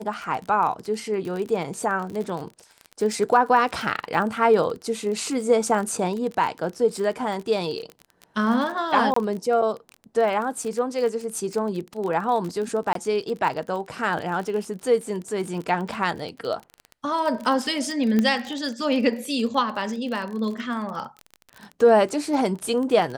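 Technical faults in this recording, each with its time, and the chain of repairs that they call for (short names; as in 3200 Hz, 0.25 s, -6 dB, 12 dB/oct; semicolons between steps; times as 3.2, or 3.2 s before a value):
crackle 32/s -29 dBFS
9.14–9.16 gap 24 ms
12.93–12.95 gap 23 ms
18.19 pop -10 dBFS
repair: de-click; interpolate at 9.14, 24 ms; interpolate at 12.93, 23 ms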